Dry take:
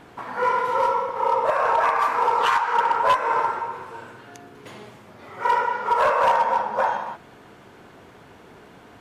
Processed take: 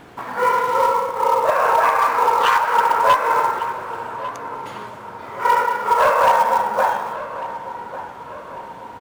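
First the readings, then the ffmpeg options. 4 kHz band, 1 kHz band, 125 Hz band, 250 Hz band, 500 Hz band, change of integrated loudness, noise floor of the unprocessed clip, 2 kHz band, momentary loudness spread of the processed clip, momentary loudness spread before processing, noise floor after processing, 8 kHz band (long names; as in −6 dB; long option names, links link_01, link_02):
+4.5 dB, +4.0 dB, +4.0 dB, +4.0 dB, +4.0 dB, +3.5 dB, −48 dBFS, +4.0 dB, 18 LU, 13 LU, −37 dBFS, can't be measured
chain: -filter_complex "[0:a]asplit=2[link_01][link_02];[link_02]acrusher=bits=3:mode=log:mix=0:aa=0.000001,volume=-5dB[link_03];[link_01][link_03]amix=inputs=2:normalize=0,asplit=2[link_04][link_05];[link_05]adelay=1148,lowpass=frequency=2600:poles=1,volume=-13.5dB,asplit=2[link_06][link_07];[link_07]adelay=1148,lowpass=frequency=2600:poles=1,volume=0.53,asplit=2[link_08][link_09];[link_09]adelay=1148,lowpass=frequency=2600:poles=1,volume=0.53,asplit=2[link_10][link_11];[link_11]adelay=1148,lowpass=frequency=2600:poles=1,volume=0.53,asplit=2[link_12][link_13];[link_13]adelay=1148,lowpass=frequency=2600:poles=1,volume=0.53[link_14];[link_04][link_06][link_08][link_10][link_12][link_14]amix=inputs=6:normalize=0"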